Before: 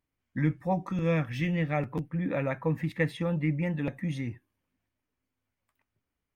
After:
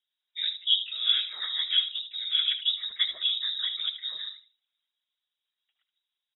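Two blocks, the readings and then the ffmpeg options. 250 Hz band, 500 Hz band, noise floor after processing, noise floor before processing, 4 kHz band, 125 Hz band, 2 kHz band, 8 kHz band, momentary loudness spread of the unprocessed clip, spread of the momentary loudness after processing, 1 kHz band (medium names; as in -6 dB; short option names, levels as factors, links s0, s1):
under -40 dB, under -30 dB, under -85 dBFS, under -85 dBFS, +27.5 dB, under -40 dB, -4.0 dB, no reading, 6 LU, 9 LU, under -15 dB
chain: -filter_complex "[0:a]equalizer=f=590:w=1.3:g=13,asplit=2[s0][s1];[s1]adelay=76,lowpass=f=1900:p=1,volume=0.316,asplit=2[s2][s3];[s3]adelay=76,lowpass=f=1900:p=1,volume=0.27,asplit=2[s4][s5];[s5]adelay=76,lowpass=f=1900:p=1,volume=0.27[s6];[s0][s2][s4][s6]amix=inputs=4:normalize=0,afftfilt=real='hypot(re,im)*cos(2*PI*random(0))':imag='hypot(re,im)*sin(2*PI*random(1))':win_size=512:overlap=0.75,lowpass=f=3300:t=q:w=0.5098,lowpass=f=3300:t=q:w=0.6013,lowpass=f=3300:t=q:w=0.9,lowpass=f=3300:t=q:w=2.563,afreqshift=-3900"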